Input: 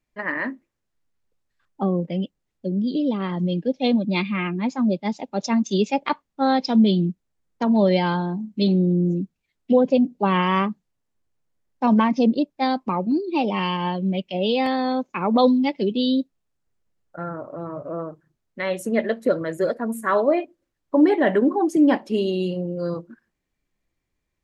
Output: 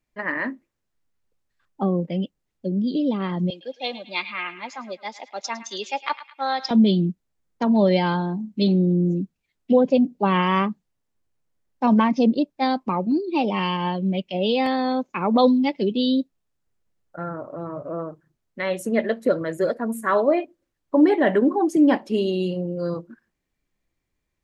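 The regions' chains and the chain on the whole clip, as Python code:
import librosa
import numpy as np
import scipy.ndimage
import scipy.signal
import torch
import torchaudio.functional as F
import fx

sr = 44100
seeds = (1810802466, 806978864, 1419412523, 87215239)

y = fx.chain(x, sr, fx.highpass(hz=760.0, slope=12),
    fx.echo_banded(ms=107, feedback_pct=48, hz=2400.0, wet_db=-12.0), at=(3.5, 6.71))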